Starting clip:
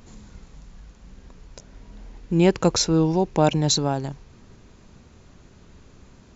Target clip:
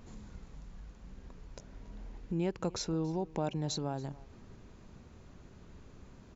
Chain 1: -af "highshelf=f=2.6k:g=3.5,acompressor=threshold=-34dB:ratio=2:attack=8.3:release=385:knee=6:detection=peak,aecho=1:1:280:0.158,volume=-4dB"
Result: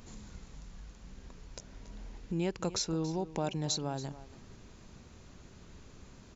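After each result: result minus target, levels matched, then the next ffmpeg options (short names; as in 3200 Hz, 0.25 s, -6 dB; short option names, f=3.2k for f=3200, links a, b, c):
echo-to-direct +6 dB; 4000 Hz band +4.0 dB
-af "highshelf=f=2.6k:g=3.5,acompressor=threshold=-34dB:ratio=2:attack=8.3:release=385:knee=6:detection=peak,aecho=1:1:280:0.0794,volume=-4dB"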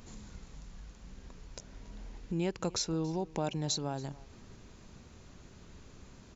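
4000 Hz band +4.0 dB
-af "highshelf=f=2.6k:g=-6,acompressor=threshold=-34dB:ratio=2:attack=8.3:release=385:knee=6:detection=peak,aecho=1:1:280:0.0794,volume=-4dB"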